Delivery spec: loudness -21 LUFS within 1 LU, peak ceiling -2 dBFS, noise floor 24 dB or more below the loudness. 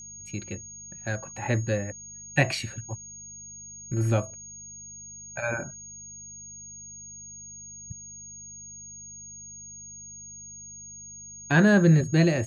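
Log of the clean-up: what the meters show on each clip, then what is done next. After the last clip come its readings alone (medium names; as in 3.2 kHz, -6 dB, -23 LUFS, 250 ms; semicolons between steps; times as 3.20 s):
hum 50 Hz; highest harmonic 200 Hz; hum level -54 dBFS; steady tone 6.6 kHz; tone level -41 dBFS; loudness -26.0 LUFS; peak level -8.0 dBFS; loudness target -21.0 LUFS
-> de-hum 50 Hz, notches 4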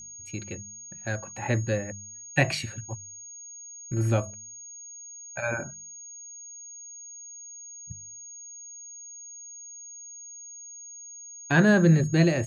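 hum not found; steady tone 6.6 kHz; tone level -41 dBFS
-> band-stop 6.6 kHz, Q 30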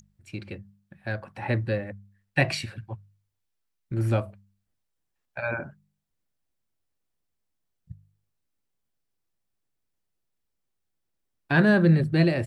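steady tone not found; loudness -25.0 LUFS; peak level -8.5 dBFS; loudness target -21.0 LUFS
-> trim +4 dB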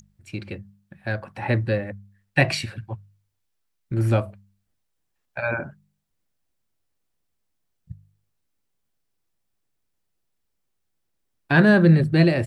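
loudness -21.5 LUFS; peak level -4.5 dBFS; noise floor -75 dBFS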